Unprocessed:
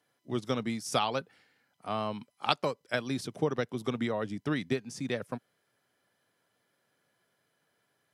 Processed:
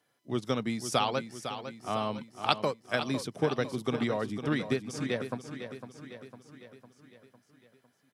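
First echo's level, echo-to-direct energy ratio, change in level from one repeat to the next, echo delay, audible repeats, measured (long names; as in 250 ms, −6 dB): −10.0 dB, −8.5 dB, −5.0 dB, 504 ms, 5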